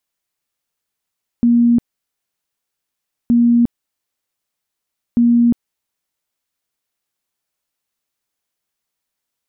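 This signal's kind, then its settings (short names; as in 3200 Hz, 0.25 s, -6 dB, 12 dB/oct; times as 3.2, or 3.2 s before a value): tone bursts 237 Hz, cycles 84, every 1.87 s, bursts 3, -8.5 dBFS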